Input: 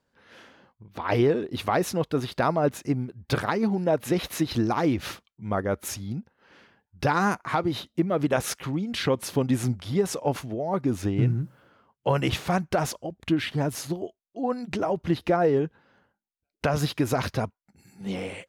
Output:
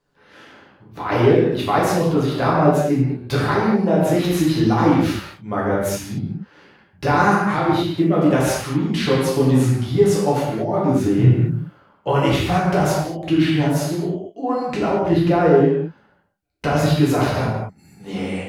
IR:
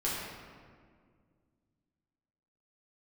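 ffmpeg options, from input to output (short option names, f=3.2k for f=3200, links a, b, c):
-filter_complex "[1:a]atrim=start_sample=2205,afade=t=out:st=0.27:d=0.01,atrim=end_sample=12348,asetrate=40131,aresample=44100[a];[0:a][a]afir=irnorm=-1:irlink=0"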